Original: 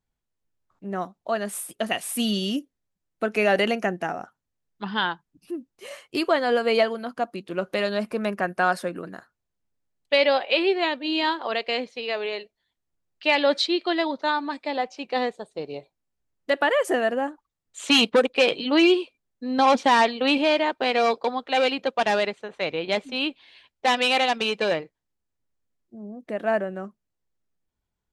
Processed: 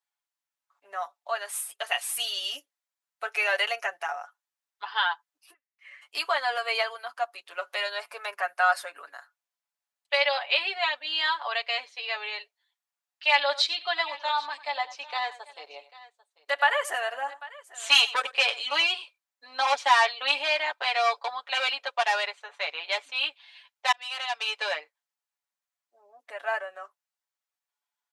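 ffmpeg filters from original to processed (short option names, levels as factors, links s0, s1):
-filter_complex "[0:a]asplit=3[s0][s1][s2];[s0]afade=t=out:st=5.52:d=0.02[s3];[s1]bandpass=f=2000:t=q:w=5.7,afade=t=in:st=5.52:d=0.02,afade=t=out:st=6.01:d=0.02[s4];[s2]afade=t=in:st=6.01:d=0.02[s5];[s3][s4][s5]amix=inputs=3:normalize=0,asplit=3[s6][s7][s8];[s6]afade=t=out:st=13.51:d=0.02[s9];[s7]aecho=1:1:94|794:0.15|0.106,afade=t=in:st=13.51:d=0.02,afade=t=out:st=18.83:d=0.02[s10];[s8]afade=t=in:st=18.83:d=0.02[s11];[s9][s10][s11]amix=inputs=3:normalize=0,asplit=2[s12][s13];[s12]atrim=end=23.92,asetpts=PTS-STARTPTS,afade=t=out:st=23.916:d=0.004:c=hsin[s14];[s13]atrim=start=23.92,asetpts=PTS-STARTPTS,afade=t=in:d=0.74[s15];[s14][s15]concat=n=2:v=0:a=1,highpass=f=770:w=0.5412,highpass=f=770:w=1.3066,aecho=1:1:7:0.82,volume=0.794"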